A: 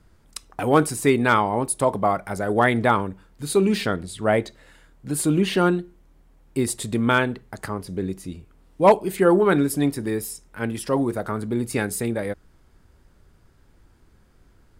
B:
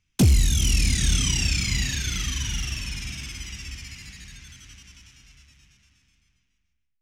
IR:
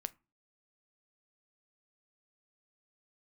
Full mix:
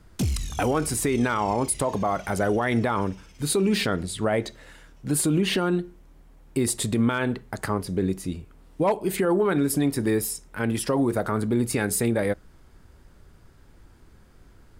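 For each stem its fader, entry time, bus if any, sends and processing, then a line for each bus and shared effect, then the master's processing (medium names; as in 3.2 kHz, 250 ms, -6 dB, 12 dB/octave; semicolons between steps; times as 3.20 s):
+2.0 dB, 0.00 s, send -12 dB, compression, threshold -19 dBFS, peak gain reduction 10 dB
-3.5 dB, 0.00 s, no send, auto duck -16 dB, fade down 0.85 s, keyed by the first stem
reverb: on, RT60 0.30 s, pre-delay 7 ms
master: peak limiter -14.5 dBFS, peak gain reduction 8 dB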